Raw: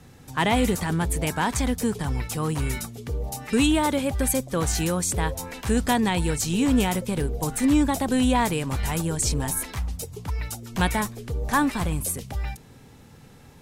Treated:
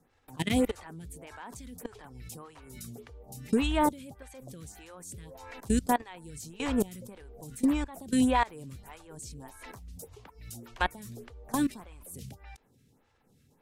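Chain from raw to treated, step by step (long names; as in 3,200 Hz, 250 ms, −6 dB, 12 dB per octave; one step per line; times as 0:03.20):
0:03.26–0:03.93: low-shelf EQ 280 Hz +6.5 dB
output level in coarse steps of 21 dB
phaser with staggered stages 1.7 Hz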